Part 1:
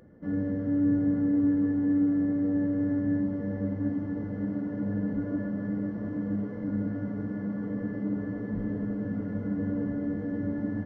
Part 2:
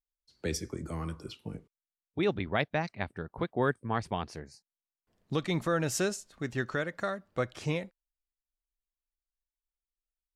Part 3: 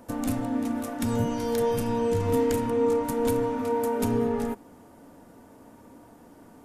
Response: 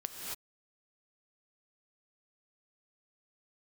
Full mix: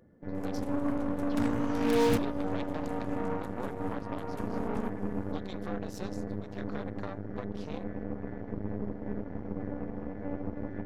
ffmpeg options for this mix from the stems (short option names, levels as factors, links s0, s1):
-filter_complex "[0:a]volume=0.631,asplit=2[s0][s1];[s1]volume=0.531[s2];[1:a]equalizer=f=125:t=o:w=1:g=-4,equalizer=f=250:t=o:w=1:g=-10,equalizer=f=500:t=o:w=1:g=8,equalizer=f=1000:t=o:w=1:g=3,equalizer=f=2000:t=o:w=1:g=-6,equalizer=f=4000:t=o:w=1:g=5,equalizer=f=8000:t=o:w=1:g=-10,agate=range=0.0224:threshold=0.00141:ratio=3:detection=peak,volume=1,asplit=2[s3][s4];[2:a]lowpass=f=2900:p=1,adelay=350,volume=1.26,asplit=2[s5][s6];[s6]volume=0.0891[s7];[s4]apad=whole_len=308588[s8];[s5][s8]sidechaincompress=threshold=0.00398:ratio=10:attack=16:release=689[s9];[s0][s3]amix=inputs=2:normalize=0,acompressor=threshold=0.00708:ratio=3,volume=1[s10];[3:a]atrim=start_sample=2205[s11];[s2][s7]amix=inputs=2:normalize=0[s12];[s12][s11]afir=irnorm=-1:irlink=0[s13];[s9][s10][s13]amix=inputs=3:normalize=0,aeval=exprs='0.0944*(cos(1*acos(clip(val(0)/0.0944,-1,1)))-cos(1*PI/2))+0.00841*(cos(3*acos(clip(val(0)/0.0944,-1,1)))-cos(3*PI/2))+0.0168*(cos(6*acos(clip(val(0)/0.0944,-1,1)))-cos(6*PI/2))+0.00266*(cos(7*acos(clip(val(0)/0.0944,-1,1)))-cos(7*PI/2))':c=same"